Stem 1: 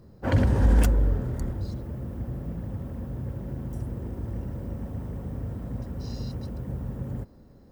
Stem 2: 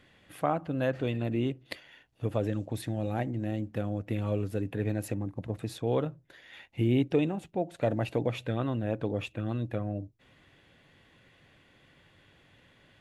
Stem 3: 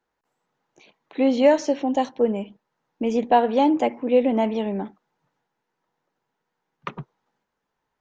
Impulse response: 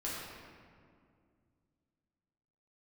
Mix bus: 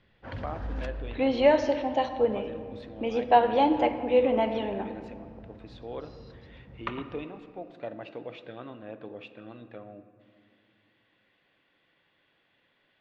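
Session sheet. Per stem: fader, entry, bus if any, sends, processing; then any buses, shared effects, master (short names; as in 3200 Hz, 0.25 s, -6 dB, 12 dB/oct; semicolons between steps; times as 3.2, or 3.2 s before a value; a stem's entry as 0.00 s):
-9.0 dB, 0.00 s, no send, bell 310 Hz -7.5 dB 2.3 oct
-8.5 dB, 0.00 s, send -11 dB, low shelf 200 Hz -10.5 dB
-2.5 dB, 0.00 s, send -9 dB, low shelf 360 Hz -9 dB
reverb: on, RT60 2.2 s, pre-delay 6 ms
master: LPF 4500 Hz 24 dB/oct; bell 77 Hz -7.5 dB 2 oct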